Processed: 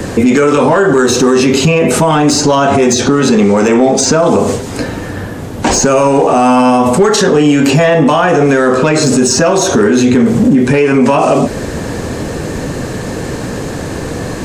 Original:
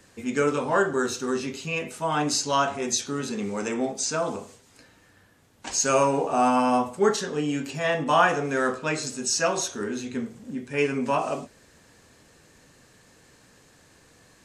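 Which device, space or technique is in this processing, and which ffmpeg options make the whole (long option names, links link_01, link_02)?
mastering chain: -filter_complex "[0:a]asettb=1/sr,asplit=3[link_01][link_02][link_03];[link_01]atrim=end=1.044[link_04];[link_02]atrim=start=1.04:end=1.45,asetpts=PTS-STARTPTS,afade=type=in:duration=0.004:curve=qsin,afade=type=out:start_time=0.406:duration=0.004:curve=qsin,bandreject=frequency=1400:width=8.6[link_05];[link_03]atrim=start=1.446[link_06];[link_04][link_05]acrossfade=duration=0.004:curve1=hsin:curve2=qsin[link_07];[link_07][link_06]acrossfade=duration=0.004:curve1=qsin:curve2=hsin,asettb=1/sr,asplit=3[link_08][link_09][link_10];[link_08]atrim=end=2.844[link_11];[link_09]atrim=start=2.84:end=4.27,asetpts=PTS-STARTPTS,afade=type=in:duration=0.004:curve=qsin,afade=type=out:start_time=1.426:duration=0.004:curve=qsin,lowpass=8600[link_12];[link_10]atrim=start=4.266[link_13];[link_11][link_12]acrossfade=duration=0.004:curve1=hsin:curve2=qsin[link_14];[link_14][link_13]acrossfade=duration=0.004:curve1=qsin:curve2=hsin,equalizer=frequency=450:width_type=o:width=2:gain=2.5,acrossover=split=690|1600[link_15][link_16][link_17];[link_15]acompressor=threshold=-36dB:ratio=4[link_18];[link_16]acompressor=threshold=-38dB:ratio=4[link_19];[link_17]acompressor=threshold=-35dB:ratio=4[link_20];[link_18][link_19][link_20]amix=inputs=3:normalize=0,acompressor=threshold=-35dB:ratio=2.5,asoftclip=type=tanh:threshold=-26.5dB,tiltshelf=frequency=970:gain=6,asoftclip=type=hard:threshold=-27dB,alimiter=level_in=34dB:limit=-1dB:release=50:level=0:latency=1,volume=-1dB"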